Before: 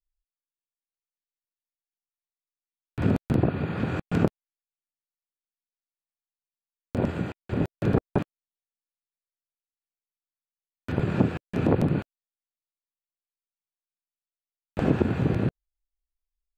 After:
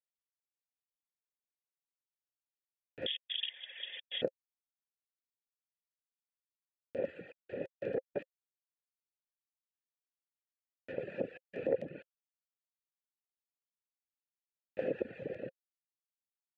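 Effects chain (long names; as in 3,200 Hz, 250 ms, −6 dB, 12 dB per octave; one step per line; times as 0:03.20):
0:03.06–0:04.22: voice inversion scrambler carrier 3,500 Hz
reverb reduction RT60 1.6 s
formant filter e
level +1.5 dB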